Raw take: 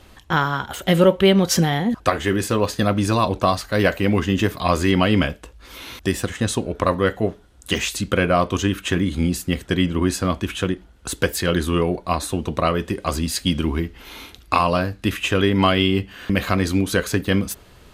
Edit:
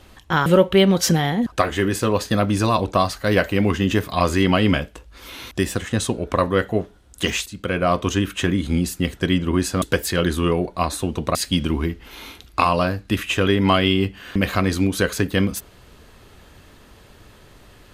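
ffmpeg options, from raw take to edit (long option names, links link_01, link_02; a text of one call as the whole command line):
ffmpeg -i in.wav -filter_complex "[0:a]asplit=5[link_01][link_02][link_03][link_04][link_05];[link_01]atrim=end=0.462[link_06];[link_02]atrim=start=0.938:end=7.94,asetpts=PTS-STARTPTS,afade=type=out:start_time=6.998:duration=0.004:curve=hsin:silence=0.177828[link_07];[link_03]atrim=start=7.94:end=10.302,asetpts=PTS-STARTPTS,afade=type=in:duration=0.5:silence=0.177828[link_08];[link_04]atrim=start=11.118:end=12.652[link_09];[link_05]atrim=start=13.288[link_10];[link_07][link_08]concat=n=2:v=0:a=1[link_11];[link_06][link_11]acrossfade=duration=0.004:curve1=hsin:curve2=hsin[link_12];[link_12][link_09]acrossfade=duration=0.004:curve1=hsin:curve2=hsin[link_13];[link_13][link_10]acrossfade=duration=0.004:curve1=hsin:curve2=hsin" out.wav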